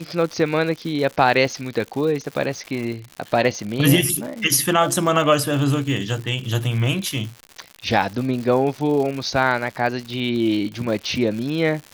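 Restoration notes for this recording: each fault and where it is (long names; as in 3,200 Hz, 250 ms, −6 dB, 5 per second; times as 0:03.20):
surface crackle 170 per second −28 dBFS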